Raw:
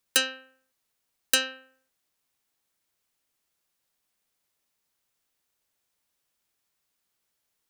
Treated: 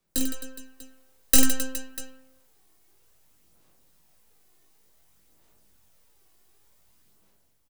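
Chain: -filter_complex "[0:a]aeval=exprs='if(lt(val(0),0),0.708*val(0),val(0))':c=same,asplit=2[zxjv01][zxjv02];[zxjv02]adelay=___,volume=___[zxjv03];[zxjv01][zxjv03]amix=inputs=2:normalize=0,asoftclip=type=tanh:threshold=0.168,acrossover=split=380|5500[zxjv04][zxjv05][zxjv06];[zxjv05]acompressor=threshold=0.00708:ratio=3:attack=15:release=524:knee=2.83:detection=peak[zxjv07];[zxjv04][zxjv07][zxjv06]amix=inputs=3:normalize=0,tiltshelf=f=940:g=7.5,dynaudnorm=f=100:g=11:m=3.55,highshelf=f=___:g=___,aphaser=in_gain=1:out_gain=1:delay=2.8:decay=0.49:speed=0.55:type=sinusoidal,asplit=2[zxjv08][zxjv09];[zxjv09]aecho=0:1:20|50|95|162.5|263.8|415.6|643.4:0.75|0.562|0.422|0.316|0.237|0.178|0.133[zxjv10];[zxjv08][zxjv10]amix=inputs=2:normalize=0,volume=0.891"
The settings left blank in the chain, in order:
19, 0.224, 4400, 7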